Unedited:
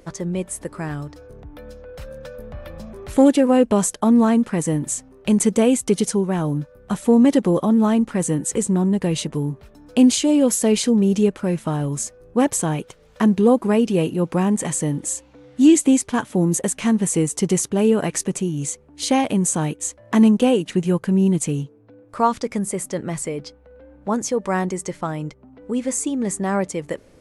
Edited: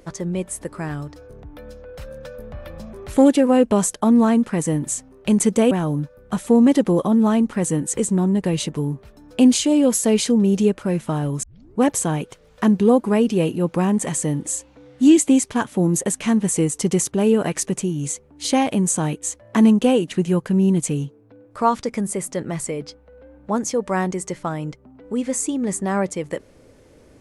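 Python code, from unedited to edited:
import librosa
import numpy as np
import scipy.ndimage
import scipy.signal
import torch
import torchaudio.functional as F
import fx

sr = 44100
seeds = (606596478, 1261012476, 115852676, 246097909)

y = fx.edit(x, sr, fx.cut(start_s=5.71, length_s=0.58),
    fx.tape_start(start_s=12.01, length_s=0.37), tone=tone)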